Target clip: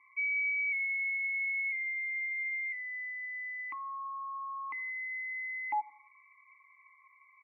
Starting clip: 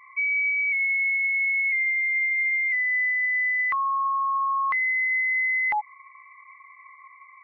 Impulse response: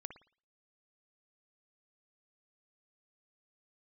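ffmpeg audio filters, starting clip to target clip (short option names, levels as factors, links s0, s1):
-filter_complex "[0:a]asplit=3[s0][s1][s2];[s0]bandpass=f=300:t=q:w=8,volume=1[s3];[s1]bandpass=f=870:t=q:w=8,volume=0.501[s4];[s2]bandpass=f=2240:t=q:w=8,volume=0.355[s5];[s3][s4][s5]amix=inputs=3:normalize=0,asplit=2[s6][s7];[s7]adelay=88,lowpass=f=1600:p=1,volume=0.075,asplit=2[s8][s9];[s9]adelay=88,lowpass=f=1600:p=1,volume=0.5,asplit=2[s10][s11];[s11]adelay=88,lowpass=f=1600:p=1,volume=0.5[s12];[s6][s8][s10][s12]amix=inputs=4:normalize=0,asplit=2[s13][s14];[1:a]atrim=start_sample=2205[s15];[s14][s15]afir=irnorm=-1:irlink=0,volume=0.316[s16];[s13][s16]amix=inputs=2:normalize=0"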